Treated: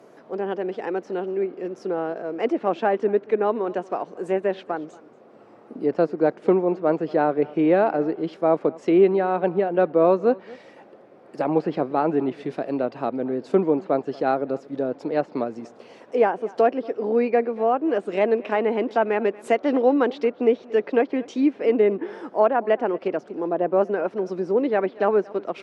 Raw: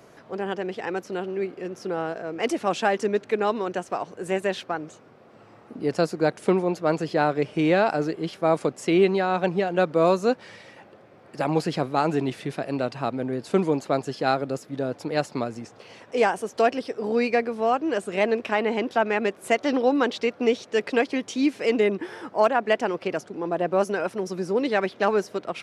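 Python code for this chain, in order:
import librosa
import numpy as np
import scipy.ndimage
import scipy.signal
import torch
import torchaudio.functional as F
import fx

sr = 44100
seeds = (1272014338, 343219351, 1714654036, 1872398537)

y = scipy.signal.sosfilt(scipy.signal.butter(2, 280.0, 'highpass', fs=sr, output='sos'), x)
y = fx.tilt_shelf(y, sr, db=6.5, hz=920.0)
y = y + 10.0 ** (-22.0 / 20.0) * np.pad(y, (int(232 * sr / 1000.0), 0))[:len(y)]
y = fx.env_lowpass_down(y, sr, base_hz=2600.0, full_db=-19.5)
y = fx.high_shelf(y, sr, hz=3900.0, db=9.0, at=(17.85, 20.23))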